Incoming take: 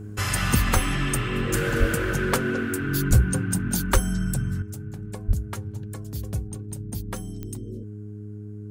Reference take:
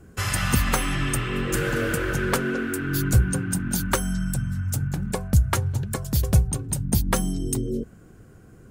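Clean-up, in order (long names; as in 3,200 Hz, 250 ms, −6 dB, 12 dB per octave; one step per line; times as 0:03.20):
click removal
hum removal 104.4 Hz, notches 4
high-pass at the plosives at 0:00.73/0:01.79/0:03.09/0:03.93/0:05.27
level correction +12 dB, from 0:04.62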